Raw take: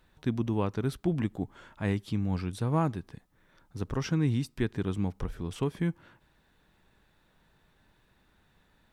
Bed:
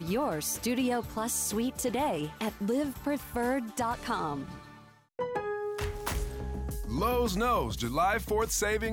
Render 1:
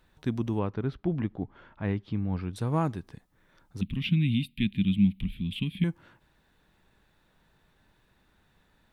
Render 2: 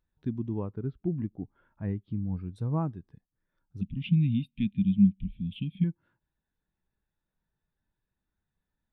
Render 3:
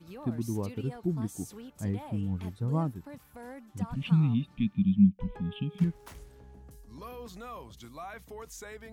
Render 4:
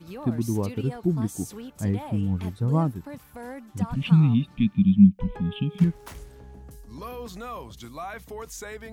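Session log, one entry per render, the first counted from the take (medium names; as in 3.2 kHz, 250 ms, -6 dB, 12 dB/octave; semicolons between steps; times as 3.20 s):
0.59–2.56 s: distance through air 270 m; 3.81–5.84 s: FFT filter 140 Hz 0 dB, 200 Hz +12 dB, 300 Hz -5 dB, 460 Hz -26 dB, 720 Hz -24 dB, 1.5 kHz -19 dB, 2.4 kHz +11 dB, 3.6 kHz +10 dB, 5.8 kHz -22 dB, 11 kHz 0 dB
in parallel at 0 dB: compression, threshold -35 dBFS, peak gain reduction 16.5 dB; on the sum: spectral contrast expander 1.5:1
add bed -15.5 dB
trim +6.5 dB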